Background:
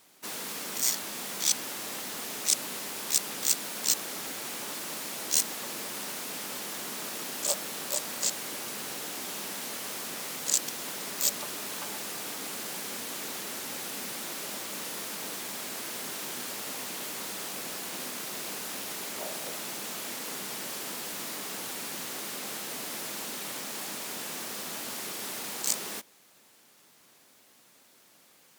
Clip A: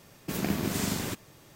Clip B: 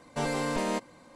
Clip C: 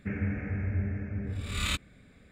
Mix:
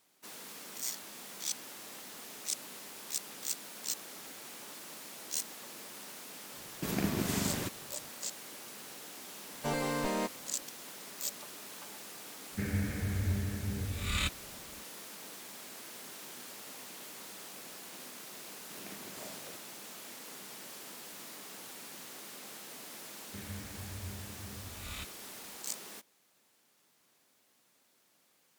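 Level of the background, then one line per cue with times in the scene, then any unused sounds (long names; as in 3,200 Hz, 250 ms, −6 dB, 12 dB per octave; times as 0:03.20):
background −10.5 dB
0:06.54: mix in A −3 dB
0:09.48: mix in B −3.5 dB
0:12.52: mix in C −2 dB
0:18.42: mix in A −16 dB + high-pass filter 450 Hz 6 dB per octave
0:23.28: mix in C −13.5 dB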